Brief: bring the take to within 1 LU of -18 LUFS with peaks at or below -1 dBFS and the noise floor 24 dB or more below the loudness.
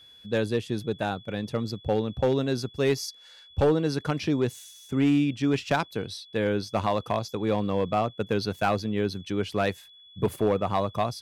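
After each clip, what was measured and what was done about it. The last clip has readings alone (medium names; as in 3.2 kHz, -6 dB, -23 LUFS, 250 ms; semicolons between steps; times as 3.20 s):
clipped samples 0.6%; clipping level -15.5 dBFS; steady tone 3.4 kHz; tone level -50 dBFS; loudness -27.5 LUFS; peak level -15.5 dBFS; loudness target -18.0 LUFS
-> clip repair -15.5 dBFS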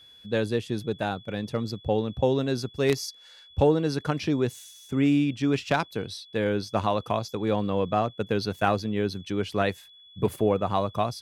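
clipped samples 0.0%; steady tone 3.4 kHz; tone level -50 dBFS
-> band-stop 3.4 kHz, Q 30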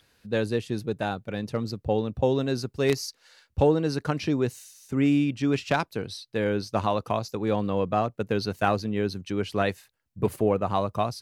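steady tone not found; loudness -27.0 LUFS; peak level -6.5 dBFS; loudness target -18.0 LUFS
-> trim +9 dB; peak limiter -1 dBFS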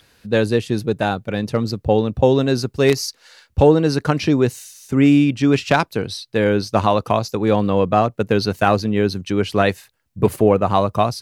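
loudness -18.5 LUFS; peak level -1.0 dBFS; noise floor -62 dBFS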